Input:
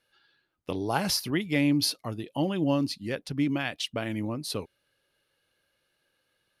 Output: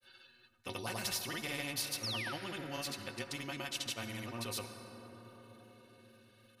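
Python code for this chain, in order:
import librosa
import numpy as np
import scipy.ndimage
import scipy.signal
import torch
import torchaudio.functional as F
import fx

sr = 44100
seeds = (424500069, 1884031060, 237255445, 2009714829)

y = fx.granulator(x, sr, seeds[0], grain_ms=100.0, per_s=20.0, spray_ms=100.0, spread_st=0)
y = fx.stiff_resonator(y, sr, f0_hz=110.0, decay_s=0.2, stiffness=0.03)
y = fx.small_body(y, sr, hz=(2700.0, 3800.0), ring_ms=45, db=12)
y = fx.spec_paint(y, sr, seeds[1], shape='fall', start_s=2.03, length_s=0.3, low_hz=1200.0, high_hz=5900.0, level_db=-40.0)
y = fx.rev_plate(y, sr, seeds[2], rt60_s=3.8, hf_ratio=0.35, predelay_ms=0, drr_db=14.0)
y = fx.spectral_comp(y, sr, ratio=2.0)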